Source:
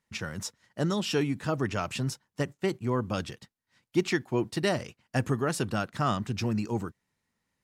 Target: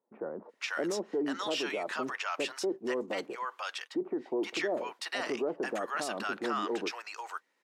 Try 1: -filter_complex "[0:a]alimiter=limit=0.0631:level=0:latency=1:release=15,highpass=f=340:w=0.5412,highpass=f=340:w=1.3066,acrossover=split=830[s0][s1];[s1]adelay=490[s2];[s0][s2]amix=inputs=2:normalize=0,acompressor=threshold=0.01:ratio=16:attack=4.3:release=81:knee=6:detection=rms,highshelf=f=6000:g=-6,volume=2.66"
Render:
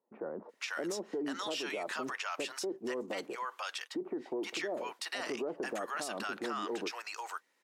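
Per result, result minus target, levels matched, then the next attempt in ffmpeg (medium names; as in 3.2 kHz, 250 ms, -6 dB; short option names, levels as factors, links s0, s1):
compression: peak gain reduction +6 dB; 8 kHz band +3.5 dB
-filter_complex "[0:a]alimiter=limit=0.0631:level=0:latency=1:release=15,highpass=f=340:w=0.5412,highpass=f=340:w=1.3066,acrossover=split=830[s0][s1];[s1]adelay=490[s2];[s0][s2]amix=inputs=2:normalize=0,acompressor=threshold=0.0211:ratio=16:attack=4.3:release=81:knee=6:detection=rms,highshelf=f=6000:g=-6,volume=2.66"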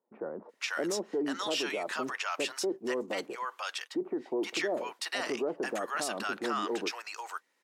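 8 kHz band +4.0 dB
-filter_complex "[0:a]alimiter=limit=0.0631:level=0:latency=1:release=15,highpass=f=340:w=0.5412,highpass=f=340:w=1.3066,acrossover=split=830[s0][s1];[s1]adelay=490[s2];[s0][s2]amix=inputs=2:normalize=0,acompressor=threshold=0.0211:ratio=16:attack=4.3:release=81:knee=6:detection=rms,highshelf=f=6000:g=-14,volume=2.66"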